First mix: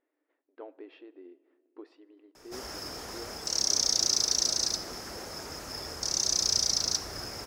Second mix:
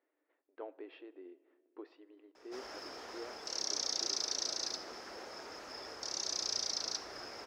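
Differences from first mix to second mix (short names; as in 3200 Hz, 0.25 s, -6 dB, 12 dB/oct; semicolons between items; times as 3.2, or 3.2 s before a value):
background -4.5 dB; master: add three-band isolator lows -17 dB, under 270 Hz, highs -17 dB, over 5200 Hz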